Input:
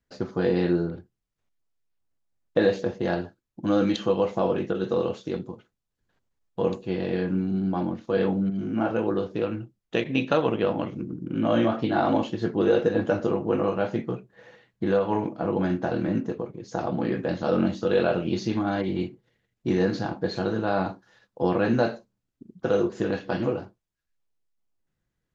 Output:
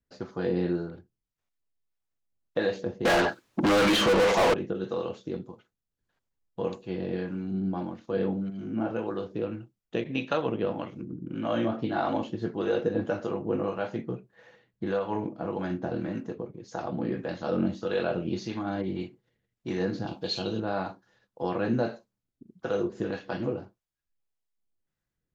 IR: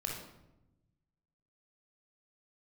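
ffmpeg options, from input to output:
-filter_complex "[0:a]acrossover=split=570[a][b];[a]aeval=exprs='val(0)*(1-0.5/2+0.5/2*cos(2*PI*1.7*n/s))':c=same[c];[b]aeval=exprs='val(0)*(1-0.5/2-0.5/2*cos(2*PI*1.7*n/s))':c=same[d];[c][d]amix=inputs=2:normalize=0,asettb=1/sr,asplit=3[e][f][g];[e]atrim=end=3.054[h];[f]atrim=start=3.05:end=4.54,asetpts=PTS-STARTPTS,afade=t=in:d=0.004:c=qsin,afade=t=out:st=1.486:d=0.004:c=qsin,asplit=2[i][j];[j]highpass=f=720:p=1,volume=39dB,asoftclip=type=tanh:threshold=-12dB[k];[i][k]amix=inputs=2:normalize=0,lowpass=f=4k:p=1,volume=-6dB[l];[g]atrim=start=4.536[m];[h][l]acrossfade=d=0.004:c1=hsin:c2=qsin[n];[n][m]acrossfade=d=0.004:c1=qsin:c2=hsin,asettb=1/sr,asplit=3[o][p][q];[o]atrim=end=20.074[r];[p]atrim=start=20.07:end=20.6,asetpts=PTS-STARTPTS,afade=t=in:d=0.004:c=qsin,afade=t=out:st=0.526:d=0.004:c=qsin,highshelf=f=2.3k:t=q:w=3:g=7.5[s];[q]atrim=start=20.596[t];[r][s]acrossfade=d=0.004:c1=hsin:c2=qsin[u];[u][t]acrossfade=d=0.004:c1=qsin:c2=hsin,volume=-3dB"

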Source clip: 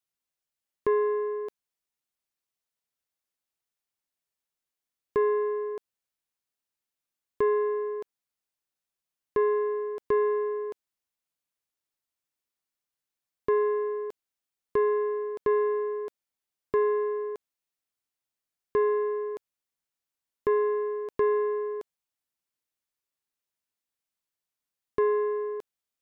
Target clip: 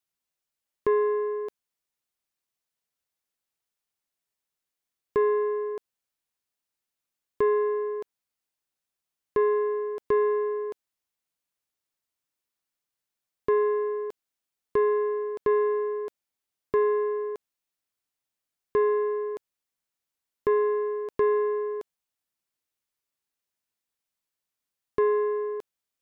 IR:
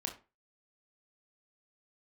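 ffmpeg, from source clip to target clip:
-af "acontrast=52,volume=-4.5dB"

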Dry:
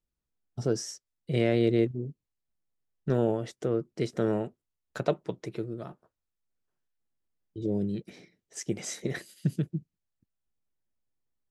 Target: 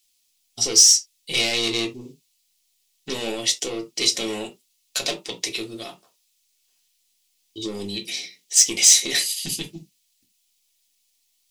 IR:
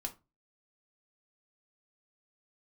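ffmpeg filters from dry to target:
-filter_complex "[0:a]asplit=2[a][b];[b]highpass=f=720:p=1,volume=22dB,asoftclip=type=tanh:threshold=-11.5dB[c];[a][c]amix=inputs=2:normalize=0,lowpass=f=6.6k:p=1,volume=-6dB,aexciter=amount=8.2:drive=7.5:freq=2.3k[d];[1:a]atrim=start_sample=2205,atrim=end_sample=3969[e];[d][e]afir=irnorm=-1:irlink=0,volume=-7dB"

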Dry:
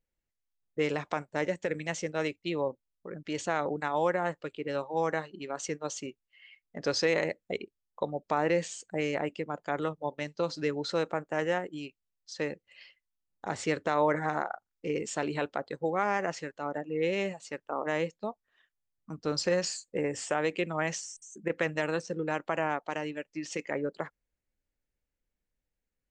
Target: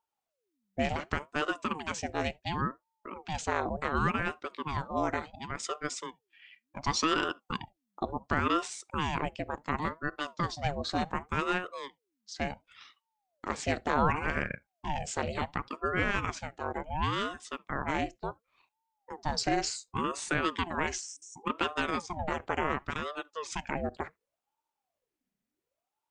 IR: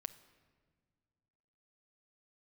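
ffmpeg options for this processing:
-filter_complex "[0:a]lowshelf=f=250:g=-10.5,asplit=2[a][b];[1:a]atrim=start_sample=2205,afade=t=out:st=0.13:d=0.01,atrim=end_sample=6174,lowshelf=f=370:g=12[c];[b][c]afir=irnorm=-1:irlink=0,volume=-4dB[d];[a][d]amix=inputs=2:normalize=0,aeval=exprs='val(0)*sin(2*PI*550*n/s+550*0.65/0.69*sin(2*PI*0.69*n/s))':c=same"

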